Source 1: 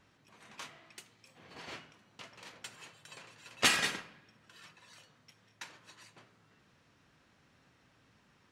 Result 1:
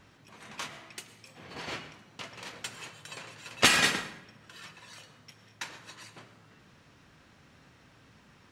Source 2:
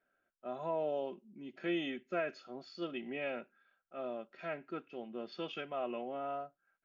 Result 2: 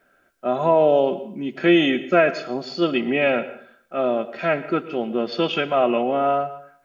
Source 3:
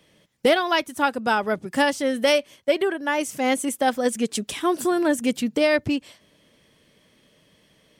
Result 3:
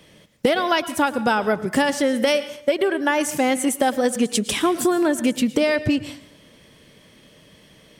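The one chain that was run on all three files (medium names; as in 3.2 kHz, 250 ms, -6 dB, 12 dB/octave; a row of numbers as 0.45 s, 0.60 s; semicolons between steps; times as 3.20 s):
bass shelf 160 Hz +3 dB; compression, threshold -24 dBFS; plate-style reverb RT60 0.6 s, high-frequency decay 0.8×, pre-delay 95 ms, DRR 14 dB; peak normalisation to -6 dBFS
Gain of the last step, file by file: +8.0 dB, +19.0 dB, +8.0 dB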